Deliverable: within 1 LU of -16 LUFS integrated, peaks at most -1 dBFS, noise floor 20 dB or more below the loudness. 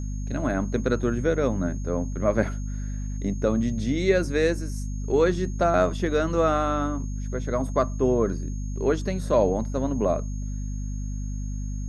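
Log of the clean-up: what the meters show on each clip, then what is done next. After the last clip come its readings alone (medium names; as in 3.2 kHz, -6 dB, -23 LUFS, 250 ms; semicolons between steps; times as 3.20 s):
hum 50 Hz; highest harmonic 250 Hz; hum level -28 dBFS; steady tone 6.5 kHz; tone level -48 dBFS; loudness -26.0 LUFS; peak level -7.5 dBFS; loudness target -16.0 LUFS
-> de-hum 50 Hz, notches 5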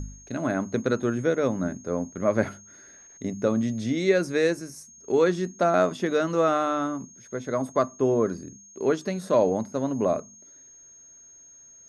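hum not found; steady tone 6.5 kHz; tone level -48 dBFS
-> band-stop 6.5 kHz, Q 30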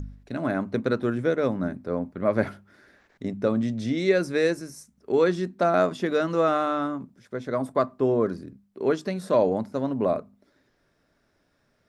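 steady tone not found; loudness -25.5 LUFS; peak level -8.5 dBFS; loudness target -16.0 LUFS
-> trim +9.5 dB; peak limiter -1 dBFS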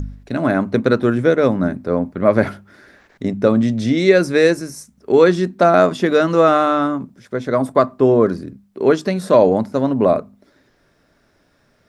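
loudness -16.5 LUFS; peak level -1.0 dBFS; noise floor -60 dBFS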